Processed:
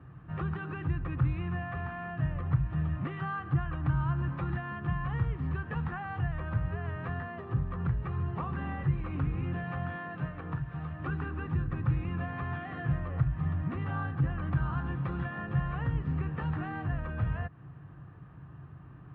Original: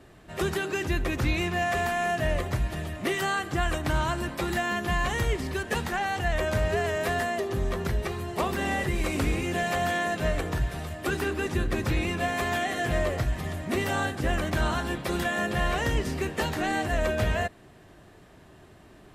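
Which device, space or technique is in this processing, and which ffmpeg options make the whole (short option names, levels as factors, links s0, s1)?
bass amplifier: -filter_complex "[0:a]acompressor=threshold=0.0282:ratio=4,highpass=72,equalizer=f=140:t=q:w=4:g=9,equalizer=f=220:t=q:w=4:g=-9,equalizer=f=390:t=q:w=4:g=-9,equalizer=f=620:t=q:w=4:g=-10,equalizer=f=1200:t=q:w=4:g=6,equalizer=f=2100:t=q:w=4:g=-8,lowpass=f=2300:w=0.5412,lowpass=f=2300:w=1.3066,asettb=1/sr,asplit=3[s0][s1][s2];[s0]atrim=end=9.964[s3];[s1]atrim=start=9.96:end=11,asetpts=PTS-STARTPTS,afade=t=in:d=0.004:c=qsin,afade=t=out:st=1.036:d=0.004:c=qsin,highpass=f=200:p=1[s4];[s2]atrim=start=10.996[s5];[s3][s4]acrossfade=d=0.004:c1=hsin:c2=qsin[s6];[s6][s5]acrossfade=d=0.004:c1=qsin:c2=hsin,bass=f=250:g=10,treble=f=4000:g=-3,volume=0.708"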